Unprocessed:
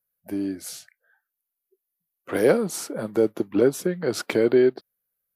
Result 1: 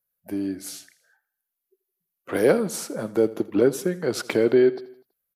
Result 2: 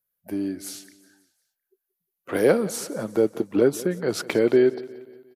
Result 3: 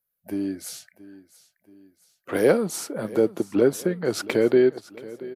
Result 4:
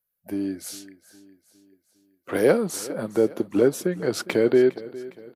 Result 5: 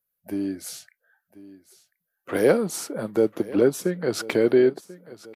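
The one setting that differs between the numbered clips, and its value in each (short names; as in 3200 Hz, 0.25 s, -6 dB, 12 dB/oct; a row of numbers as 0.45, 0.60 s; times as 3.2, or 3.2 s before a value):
feedback echo, time: 82, 178, 678, 408, 1039 ms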